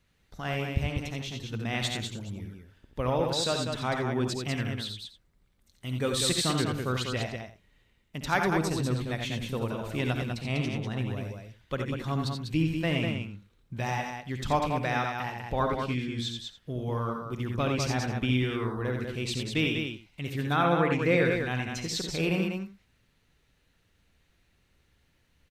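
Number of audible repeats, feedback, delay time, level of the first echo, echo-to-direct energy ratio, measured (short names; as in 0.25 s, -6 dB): 4, no steady repeat, 56 ms, -14.5 dB, -1.5 dB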